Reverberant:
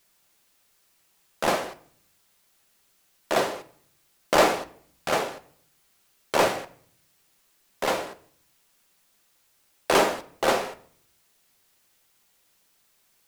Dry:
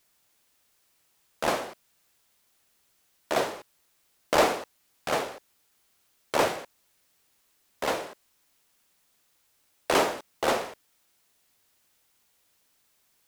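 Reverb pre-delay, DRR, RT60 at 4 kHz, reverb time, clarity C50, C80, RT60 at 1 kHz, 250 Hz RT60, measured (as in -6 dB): 5 ms, 9.0 dB, 0.45 s, 0.60 s, 17.5 dB, 21.0 dB, 0.55 s, 0.80 s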